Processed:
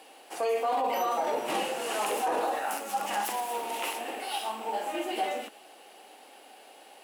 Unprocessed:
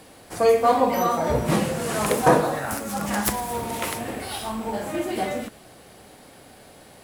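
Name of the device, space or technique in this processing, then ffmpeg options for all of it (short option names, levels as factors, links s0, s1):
laptop speaker: -af "highpass=f=310:w=0.5412,highpass=f=310:w=1.3066,equalizer=f=810:t=o:w=0.26:g=10,equalizer=f=2800:t=o:w=0.38:g=10,alimiter=limit=0.188:level=0:latency=1:release=19,volume=0.501"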